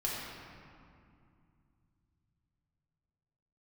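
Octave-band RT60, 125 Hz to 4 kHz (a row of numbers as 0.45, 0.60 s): 5.0, 3.5, 2.4, 2.4, 2.0, 1.4 s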